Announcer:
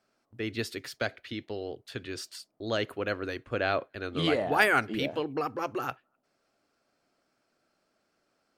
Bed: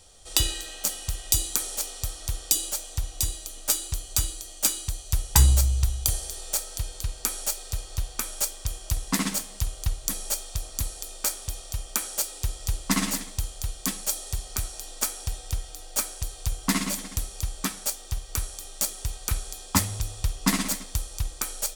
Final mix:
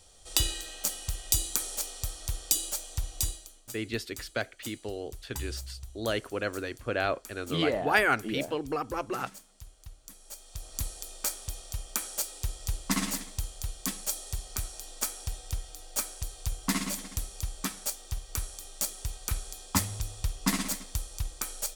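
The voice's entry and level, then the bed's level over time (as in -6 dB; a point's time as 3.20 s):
3.35 s, -0.5 dB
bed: 3.28 s -3.5 dB
3.68 s -20.5 dB
10.18 s -20.5 dB
10.77 s -4.5 dB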